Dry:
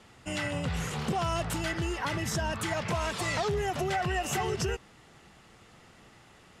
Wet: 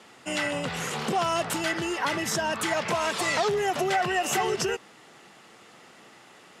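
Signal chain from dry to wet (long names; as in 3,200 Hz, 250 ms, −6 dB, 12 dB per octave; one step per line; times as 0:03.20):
high-pass filter 250 Hz 12 dB per octave
level +5.5 dB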